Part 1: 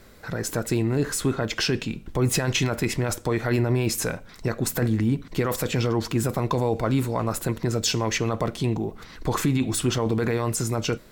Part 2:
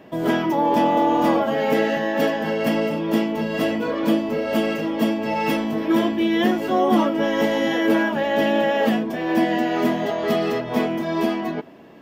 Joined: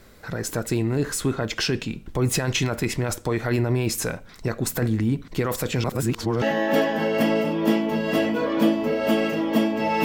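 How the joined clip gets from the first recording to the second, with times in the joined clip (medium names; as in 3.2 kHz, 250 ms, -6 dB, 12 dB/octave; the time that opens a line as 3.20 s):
part 1
5.84–6.42 s: reverse
6.42 s: go over to part 2 from 1.88 s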